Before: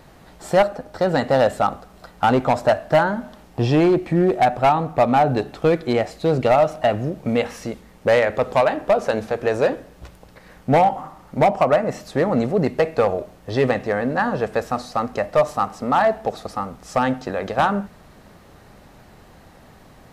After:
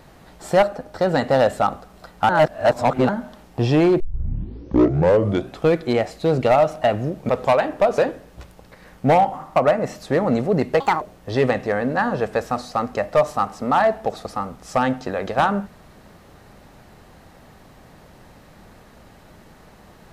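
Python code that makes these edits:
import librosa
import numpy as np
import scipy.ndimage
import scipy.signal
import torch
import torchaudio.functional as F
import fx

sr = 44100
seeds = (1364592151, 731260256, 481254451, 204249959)

y = fx.edit(x, sr, fx.reverse_span(start_s=2.29, length_s=0.8),
    fx.tape_start(start_s=4.0, length_s=1.62),
    fx.cut(start_s=7.29, length_s=1.08),
    fx.cut(start_s=9.06, length_s=0.56),
    fx.cut(start_s=11.2, length_s=0.41),
    fx.speed_span(start_s=12.85, length_s=0.37, speed=1.71), tone=tone)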